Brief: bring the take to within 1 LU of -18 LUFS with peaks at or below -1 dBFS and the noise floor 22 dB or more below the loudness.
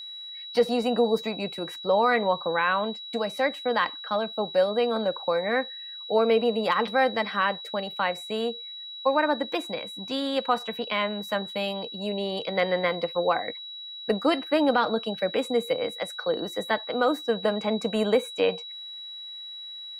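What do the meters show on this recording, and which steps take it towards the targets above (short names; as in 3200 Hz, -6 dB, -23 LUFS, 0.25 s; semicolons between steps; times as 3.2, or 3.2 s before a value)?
steady tone 3900 Hz; tone level -37 dBFS; loudness -26.5 LUFS; peak -10.0 dBFS; loudness target -18.0 LUFS
-> notch 3900 Hz, Q 30; gain +8.5 dB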